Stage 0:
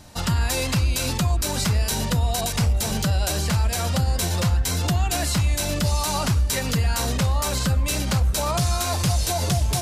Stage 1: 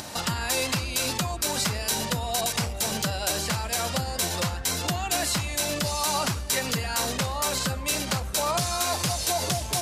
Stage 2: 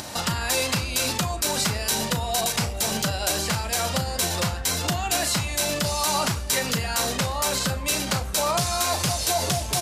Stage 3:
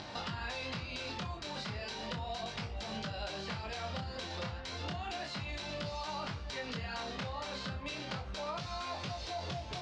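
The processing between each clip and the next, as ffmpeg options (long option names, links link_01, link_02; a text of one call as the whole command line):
ffmpeg -i in.wav -af "acompressor=mode=upward:threshold=-24dB:ratio=2.5,highpass=frequency=330:poles=1" out.wav
ffmpeg -i in.wav -filter_complex "[0:a]asplit=2[link_01][link_02];[link_02]adelay=36,volume=-11.5dB[link_03];[link_01][link_03]amix=inputs=2:normalize=0,volume=2dB" out.wav
ffmpeg -i in.wav -af "flanger=delay=19:depth=7.8:speed=0.34,acompressor=threshold=-30dB:ratio=6,lowpass=frequency=4500:width=0.5412,lowpass=frequency=4500:width=1.3066,volume=-5dB" out.wav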